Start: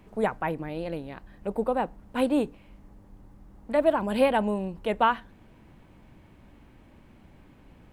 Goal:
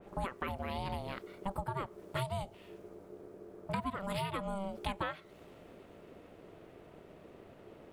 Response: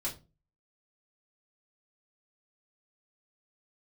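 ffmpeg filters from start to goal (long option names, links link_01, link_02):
-af "acompressor=threshold=-32dB:ratio=16,aeval=exprs='val(0)*sin(2*PI*390*n/s)':channel_layout=same,adynamicequalizer=threshold=0.00126:dfrequency=2400:dqfactor=0.7:tfrequency=2400:tqfactor=0.7:attack=5:release=100:ratio=0.375:range=4:mode=boostabove:tftype=highshelf,volume=1.5dB"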